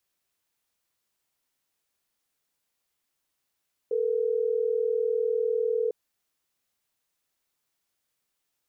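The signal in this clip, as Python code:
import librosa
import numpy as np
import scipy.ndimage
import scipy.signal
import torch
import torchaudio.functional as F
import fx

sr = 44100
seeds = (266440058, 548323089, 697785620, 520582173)

y = fx.call_progress(sr, length_s=3.12, kind='ringback tone', level_db=-26.0)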